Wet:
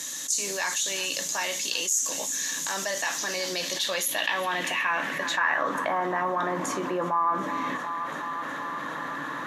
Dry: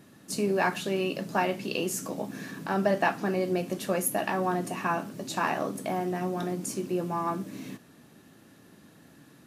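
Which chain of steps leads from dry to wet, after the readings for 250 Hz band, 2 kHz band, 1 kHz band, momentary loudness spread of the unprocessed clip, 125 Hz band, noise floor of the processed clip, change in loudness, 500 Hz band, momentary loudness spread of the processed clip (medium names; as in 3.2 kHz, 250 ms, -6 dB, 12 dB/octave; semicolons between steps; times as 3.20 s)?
-5.5 dB, +7.0 dB, +3.5 dB, 9 LU, -8.5 dB, -34 dBFS, +2.5 dB, -3.0 dB, 8 LU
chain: rippled EQ curve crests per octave 1.1, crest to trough 7 dB; on a send: thinning echo 368 ms, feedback 68%, high-pass 450 Hz, level -21 dB; on the sum: band-pass sweep 6.7 kHz -> 1.2 kHz, 3.06–6.01 s; level flattener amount 70%; trim +6.5 dB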